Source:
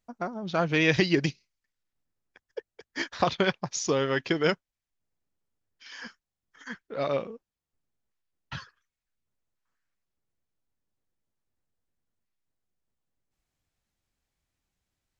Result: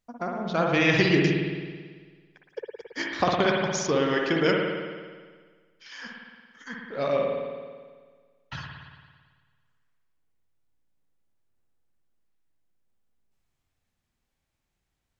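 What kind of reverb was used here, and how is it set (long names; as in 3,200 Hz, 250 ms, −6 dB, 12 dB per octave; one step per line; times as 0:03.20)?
spring reverb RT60 1.6 s, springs 55 ms, chirp 55 ms, DRR −0.5 dB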